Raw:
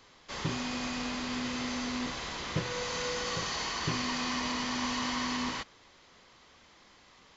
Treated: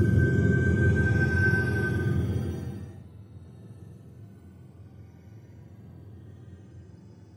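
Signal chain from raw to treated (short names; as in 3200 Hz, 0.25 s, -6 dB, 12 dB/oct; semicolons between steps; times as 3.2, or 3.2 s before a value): spectrum mirrored in octaves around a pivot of 620 Hz; rotary speaker horn 1.2 Hz, later 8 Hz, at 5.14; Paulstretch 5.3×, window 0.25 s, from 5.15; gain +8 dB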